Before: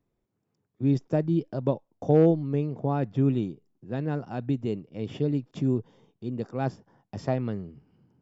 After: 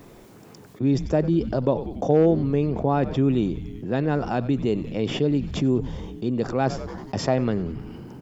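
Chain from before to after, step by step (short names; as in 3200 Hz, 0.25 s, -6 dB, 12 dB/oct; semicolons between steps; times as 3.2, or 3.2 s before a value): low shelf 180 Hz -9 dB; frequency-shifting echo 94 ms, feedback 59%, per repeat -110 Hz, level -20 dB; fast leveller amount 50%; gain +3 dB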